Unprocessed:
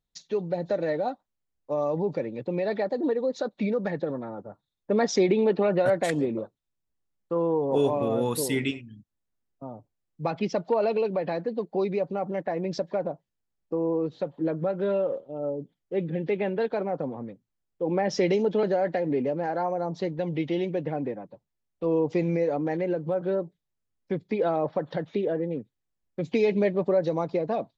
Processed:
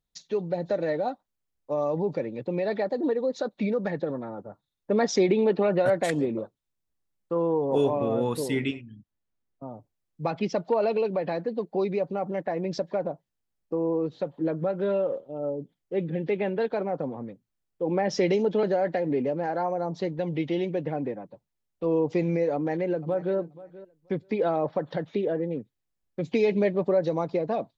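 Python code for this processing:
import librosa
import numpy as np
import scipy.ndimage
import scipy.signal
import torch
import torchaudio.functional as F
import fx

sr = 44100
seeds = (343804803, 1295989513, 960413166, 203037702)

y = fx.lowpass(x, sr, hz=3300.0, slope=6, at=(7.84, 9.71))
y = fx.echo_throw(y, sr, start_s=22.54, length_s=0.82, ms=480, feedback_pct=15, wet_db=-18.0)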